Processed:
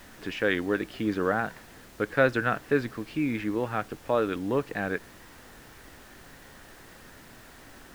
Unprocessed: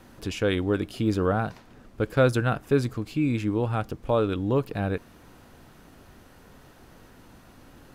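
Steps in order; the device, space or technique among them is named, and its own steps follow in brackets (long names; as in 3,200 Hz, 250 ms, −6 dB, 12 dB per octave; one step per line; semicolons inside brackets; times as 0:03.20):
horn gramophone (band-pass filter 190–3,800 Hz; parametric band 1,800 Hz +11 dB 0.56 octaves; tape wow and flutter; pink noise bed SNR 21 dB)
level −2 dB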